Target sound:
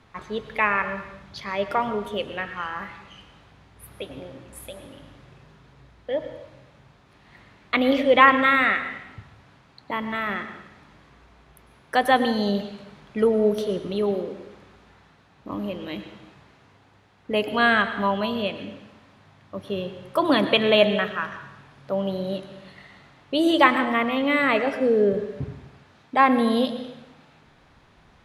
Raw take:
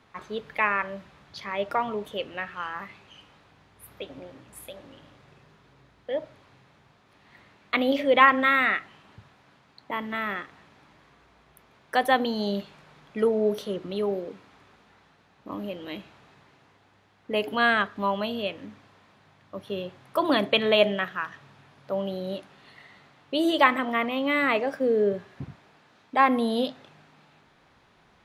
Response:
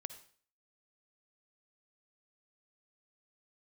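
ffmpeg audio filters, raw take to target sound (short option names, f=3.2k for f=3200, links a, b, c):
-filter_complex "[0:a]asplit=2[a][b];[1:a]atrim=start_sample=2205,asetrate=23373,aresample=44100,lowshelf=f=130:g=12[c];[b][c]afir=irnorm=-1:irlink=0,volume=10dB[d];[a][d]amix=inputs=2:normalize=0,volume=-9.5dB"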